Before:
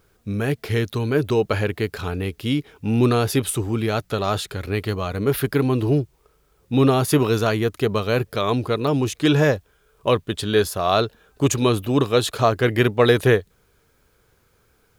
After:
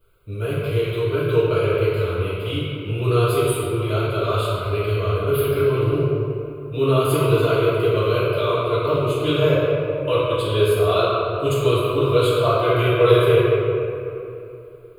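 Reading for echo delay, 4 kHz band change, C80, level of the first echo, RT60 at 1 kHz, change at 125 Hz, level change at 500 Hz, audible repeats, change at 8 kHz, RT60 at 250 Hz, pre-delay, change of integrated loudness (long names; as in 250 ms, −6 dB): no echo audible, −0.5 dB, −1.5 dB, no echo audible, 2.7 s, +1.5 dB, +3.5 dB, no echo audible, −6.0 dB, 3.3 s, 3 ms, +1.0 dB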